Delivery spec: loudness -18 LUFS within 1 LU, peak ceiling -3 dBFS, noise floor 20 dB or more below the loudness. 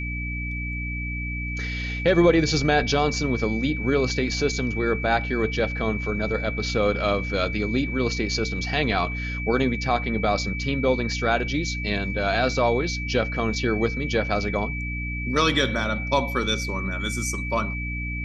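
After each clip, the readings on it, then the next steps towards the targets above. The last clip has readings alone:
hum 60 Hz; harmonics up to 300 Hz; hum level -28 dBFS; steady tone 2300 Hz; tone level -31 dBFS; loudness -24.0 LUFS; peak -7.0 dBFS; loudness target -18.0 LUFS
-> de-hum 60 Hz, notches 5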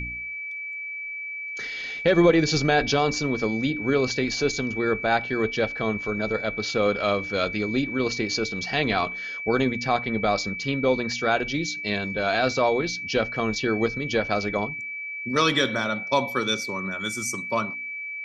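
hum none; steady tone 2300 Hz; tone level -31 dBFS
-> notch 2300 Hz, Q 30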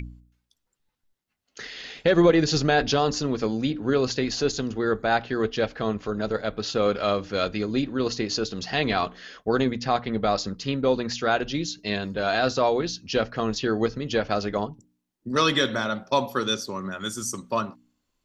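steady tone none; loudness -25.0 LUFS; peak -8.0 dBFS; loudness target -18.0 LUFS
-> gain +7 dB; limiter -3 dBFS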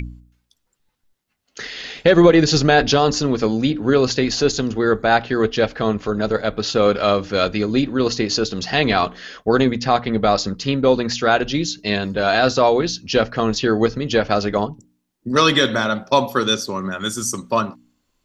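loudness -18.5 LUFS; peak -3.0 dBFS; noise floor -71 dBFS

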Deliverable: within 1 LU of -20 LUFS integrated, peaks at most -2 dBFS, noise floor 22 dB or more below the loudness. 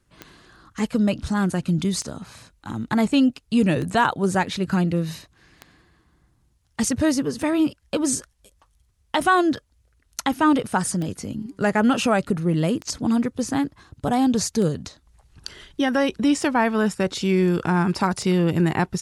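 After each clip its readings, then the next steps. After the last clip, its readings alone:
clicks 11; loudness -22.5 LUFS; peak -7.5 dBFS; loudness target -20.0 LUFS
-> de-click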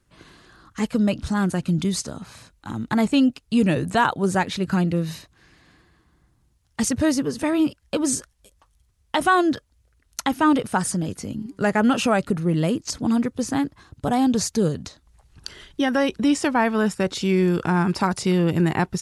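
clicks 0; loudness -22.5 LUFS; peak -7.5 dBFS; loudness target -20.0 LUFS
-> gain +2.5 dB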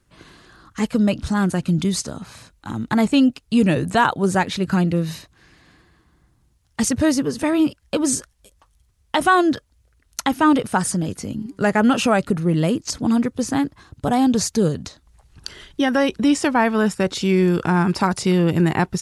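loudness -20.0 LUFS; peak -5.0 dBFS; noise floor -62 dBFS

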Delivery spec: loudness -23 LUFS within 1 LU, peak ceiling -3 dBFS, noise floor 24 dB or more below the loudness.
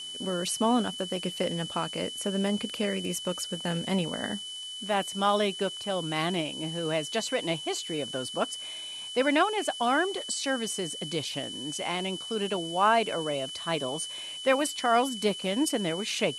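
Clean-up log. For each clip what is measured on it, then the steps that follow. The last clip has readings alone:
steady tone 3000 Hz; tone level -37 dBFS; noise floor -39 dBFS; noise floor target -53 dBFS; loudness -29.0 LUFS; peak -11.5 dBFS; loudness target -23.0 LUFS
-> notch 3000 Hz, Q 30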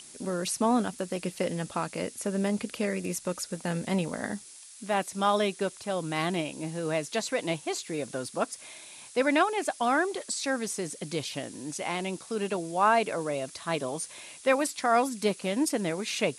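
steady tone none; noise floor -49 dBFS; noise floor target -54 dBFS
-> noise print and reduce 6 dB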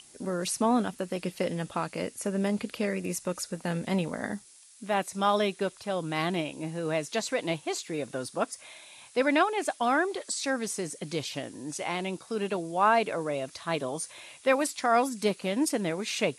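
noise floor -54 dBFS; loudness -30.0 LUFS; peak -11.5 dBFS; loudness target -23.0 LUFS
-> gain +7 dB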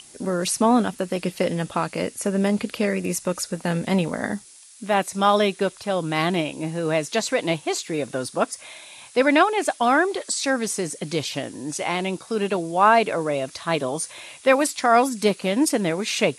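loudness -23.0 LUFS; peak -4.5 dBFS; noise floor -47 dBFS

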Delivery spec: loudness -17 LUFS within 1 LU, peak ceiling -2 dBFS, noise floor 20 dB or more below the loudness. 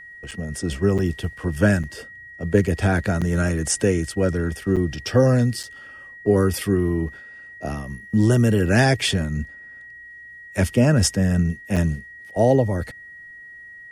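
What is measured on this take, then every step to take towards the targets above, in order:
dropouts 7; longest dropout 6.6 ms; steady tone 1900 Hz; tone level -39 dBFS; loudness -21.0 LUFS; peak -4.0 dBFS; loudness target -17.0 LUFS
-> interpolate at 0.31/0.98/1.83/3.21/4.76/5.63/11.76, 6.6 ms; notch 1900 Hz, Q 30; gain +4 dB; limiter -2 dBFS

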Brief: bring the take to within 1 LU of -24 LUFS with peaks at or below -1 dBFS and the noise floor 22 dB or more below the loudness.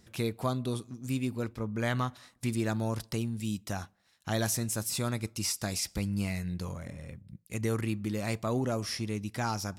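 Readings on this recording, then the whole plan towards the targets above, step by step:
loudness -33.0 LUFS; peak -17.5 dBFS; loudness target -24.0 LUFS
-> gain +9 dB

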